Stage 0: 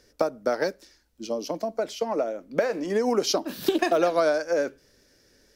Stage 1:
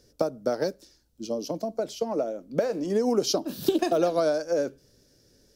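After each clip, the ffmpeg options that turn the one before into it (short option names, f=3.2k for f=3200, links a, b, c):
-af "equalizer=f=125:t=o:w=1:g=7,equalizer=f=1k:t=o:w=1:g=-4,equalizer=f=2k:t=o:w=1:g=-10"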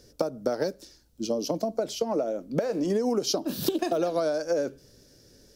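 -af "acompressor=threshold=-28dB:ratio=6,volume=5dB"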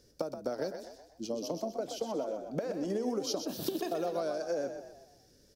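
-filter_complex "[0:a]asplit=6[a][b][c][d][e][f];[b]adelay=125,afreqshift=37,volume=-8dB[g];[c]adelay=250,afreqshift=74,volume=-14.9dB[h];[d]adelay=375,afreqshift=111,volume=-21.9dB[i];[e]adelay=500,afreqshift=148,volume=-28.8dB[j];[f]adelay=625,afreqshift=185,volume=-35.7dB[k];[a][g][h][i][j][k]amix=inputs=6:normalize=0,volume=-8dB"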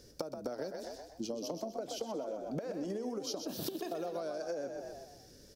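-af "acompressor=threshold=-42dB:ratio=6,volume=6dB"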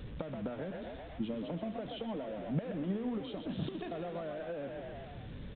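-af "aeval=exprs='val(0)+0.5*0.00668*sgn(val(0))':c=same,firequalizer=gain_entry='entry(180,0);entry(340,-12);entry(2100,-8)':delay=0.05:min_phase=1,aresample=8000,aresample=44100,volume=7.5dB"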